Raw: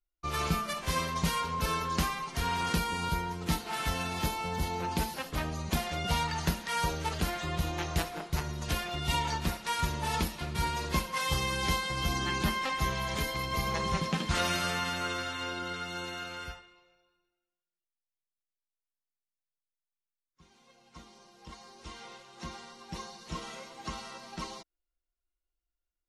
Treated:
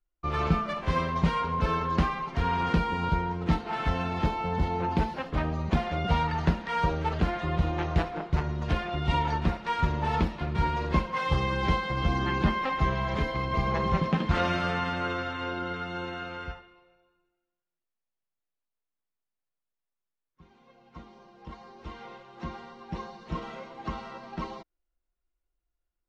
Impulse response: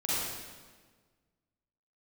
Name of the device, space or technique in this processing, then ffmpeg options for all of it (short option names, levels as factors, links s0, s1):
phone in a pocket: -af "lowpass=3600,highshelf=f=2200:g=-11,volume=2"